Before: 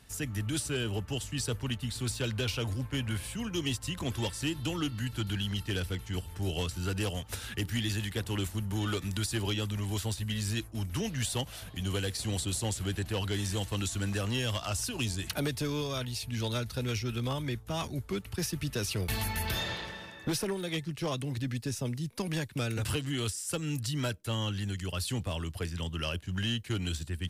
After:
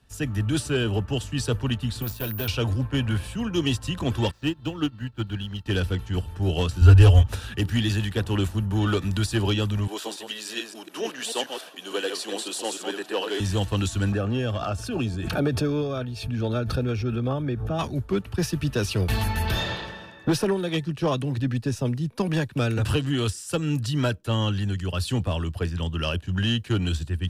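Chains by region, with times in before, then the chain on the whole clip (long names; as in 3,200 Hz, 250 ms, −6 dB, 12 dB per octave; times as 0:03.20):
0:02.02–0:02.48: parametric band 4,100 Hz −4.5 dB 1.1 octaves + tube saturation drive 29 dB, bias 0.75 + bad sample-rate conversion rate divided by 3×, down filtered, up zero stuff
0:04.31–0:05.66: running median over 5 samples + expander for the loud parts 2.5 to 1, over −41 dBFS
0:06.81–0:07.27: low shelf with overshoot 110 Hz +12.5 dB, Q 3 + comb filter 7.1 ms, depth 75%
0:09.87–0:13.40: delay that plays each chunk backwards 145 ms, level −5 dB + high-pass filter 320 Hz 24 dB per octave
0:14.12–0:17.79: high-shelf EQ 2,400 Hz −10 dB + notch comb filter 990 Hz + background raised ahead of every attack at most 32 dB per second
whole clip: high-shelf EQ 4,700 Hz −12 dB; notch filter 2,100 Hz, Q 6.7; multiband upward and downward expander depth 40%; level +9 dB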